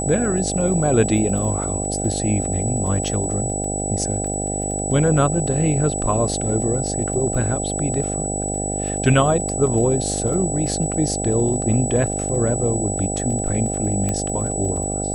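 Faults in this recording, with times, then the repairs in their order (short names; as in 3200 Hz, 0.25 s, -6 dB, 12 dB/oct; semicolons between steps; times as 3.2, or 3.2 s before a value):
buzz 50 Hz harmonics 16 -26 dBFS
crackle 23/s -30 dBFS
tone 7900 Hz -26 dBFS
14.09 pop -11 dBFS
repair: de-click; de-hum 50 Hz, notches 16; notch 7900 Hz, Q 30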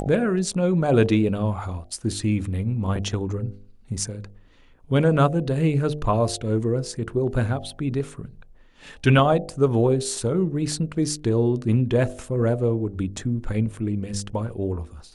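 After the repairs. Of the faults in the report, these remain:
none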